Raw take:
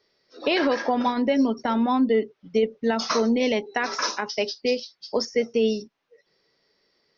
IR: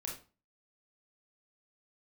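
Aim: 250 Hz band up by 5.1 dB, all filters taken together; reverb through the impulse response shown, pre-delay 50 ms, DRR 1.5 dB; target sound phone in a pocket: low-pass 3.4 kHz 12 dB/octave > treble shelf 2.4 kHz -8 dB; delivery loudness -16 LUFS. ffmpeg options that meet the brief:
-filter_complex "[0:a]equalizer=f=250:t=o:g=5.5,asplit=2[s0][s1];[1:a]atrim=start_sample=2205,adelay=50[s2];[s1][s2]afir=irnorm=-1:irlink=0,volume=0.891[s3];[s0][s3]amix=inputs=2:normalize=0,lowpass=3400,highshelf=f=2400:g=-8,volume=1.5"

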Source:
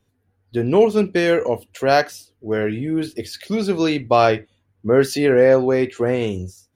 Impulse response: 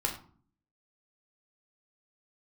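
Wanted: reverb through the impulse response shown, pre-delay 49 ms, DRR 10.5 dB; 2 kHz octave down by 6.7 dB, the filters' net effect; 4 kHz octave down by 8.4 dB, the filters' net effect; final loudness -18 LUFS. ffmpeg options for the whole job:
-filter_complex "[0:a]equalizer=f=2000:t=o:g=-7,equalizer=f=4000:t=o:g=-8.5,asplit=2[s0][s1];[1:a]atrim=start_sample=2205,adelay=49[s2];[s1][s2]afir=irnorm=-1:irlink=0,volume=0.158[s3];[s0][s3]amix=inputs=2:normalize=0,volume=1.12"

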